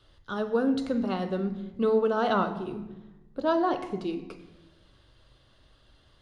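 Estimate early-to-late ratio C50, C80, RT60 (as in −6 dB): 11.0 dB, 13.0 dB, 1.1 s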